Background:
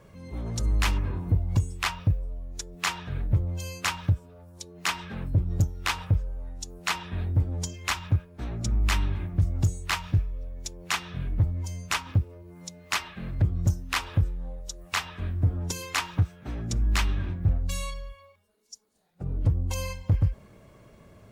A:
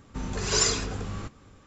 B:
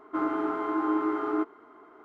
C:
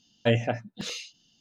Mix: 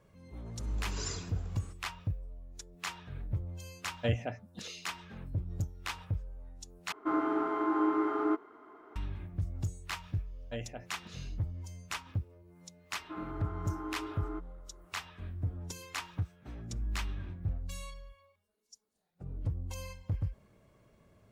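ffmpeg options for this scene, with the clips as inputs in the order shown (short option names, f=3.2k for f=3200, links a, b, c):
-filter_complex "[3:a]asplit=2[a][b];[2:a]asplit=2[c][d];[0:a]volume=-11dB,asplit=2[e][f];[e]atrim=end=6.924[g];[c]atrim=end=2.04,asetpts=PTS-STARTPTS,volume=-2dB[h];[f]atrim=start=8.956[i];[1:a]atrim=end=1.66,asetpts=PTS-STARTPTS,volume=-16.5dB,afade=t=in:d=0.004:c=hsin,afade=t=out:st=1.656:d=0.004:c=hsin,adelay=450[j];[a]atrim=end=1.4,asetpts=PTS-STARTPTS,volume=-9.5dB,afade=t=in:d=0.004:c=hsin,afade=t=out:st=1.396:d=0.004:c=hsin,adelay=3780[k];[b]atrim=end=1.4,asetpts=PTS-STARTPTS,volume=-17dB,afade=t=in:d=0.004:c=hsin,afade=t=out:st=1.396:d=0.004:c=hsin,adelay=452466S[l];[d]atrim=end=2.04,asetpts=PTS-STARTPTS,volume=-13.5dB,afade=t=in:d=0.004:c=hsin,afade=t=out:st=2.036:d=0.004:c=hsin,adelay=12960[m];[g][h]acrossfade=d=0.004:c1=hsin:c2=hsin[n];[n][i]acrossfade=d=0.004:c1=hsin:c2=hsin[o];[o][j][k][l][m]amix=inputs=5:normalize=0"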